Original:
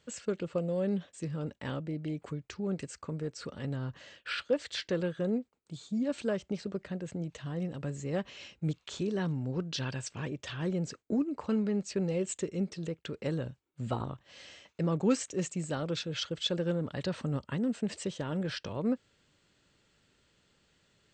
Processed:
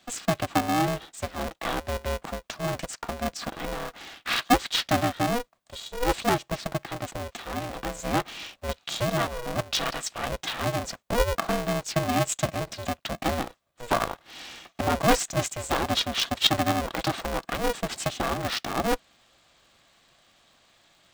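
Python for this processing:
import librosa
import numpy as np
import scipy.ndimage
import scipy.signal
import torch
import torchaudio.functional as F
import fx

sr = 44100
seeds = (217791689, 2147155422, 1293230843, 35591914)

y = scipy.signal.sosfilt(scipy.signal.butter(8, 260.0, 'highpass', fs=sr, output='sos'), x)
y = fx.small_body(y, sr, hz=(920.0, 3600.0), ring_ms=20, db=10)
y = y * np.sign(np.sin(2.0 * np.pi * 240.0 * np.arange(len(y)) / sr))
y = F.gain(torch.from_numpy(y), 8.5).numpy()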